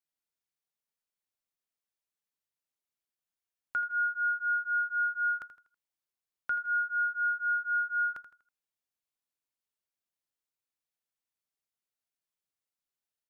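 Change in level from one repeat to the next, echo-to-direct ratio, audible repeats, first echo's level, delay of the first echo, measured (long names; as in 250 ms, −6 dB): −8.5 dB, −11.5 dB, 3, −12.0 dB, 81 ms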